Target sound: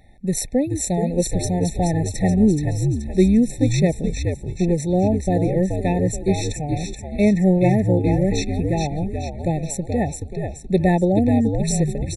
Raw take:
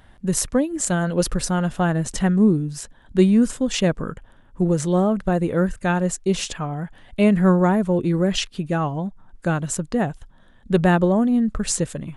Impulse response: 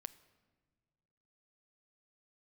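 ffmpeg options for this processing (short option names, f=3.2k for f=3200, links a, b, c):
-filter_complex "[0:a]asplit=7[a][b][c][d][e][f][g];[b]adelay=427,afreqshift=-76,volume=-5dB[h];[c]adelay=854,afreqshift=-152,volume=-11.7dB[i];[d]adelay=1281,afreqshift=-228,volume=-18.5dB[j];[e]adelay=1708,afreqshift=-304,volume=-25.2dB[k];[f]adelay=2135,afreqshift=-380,volume=-32dB[l];[g]adelay=2562,afreqshift=-456,volume=-38.7dB[m];[a][h][i][j][k][l][m]amix=inputs=7:normalize=0,afftfilt=real='re*eq(mod(floor(b*sr/1024/880),2),0)':imag='im*eq(mod(floor(b*sr/1024/880),2),0)':win_size=1024:overlap=0.75"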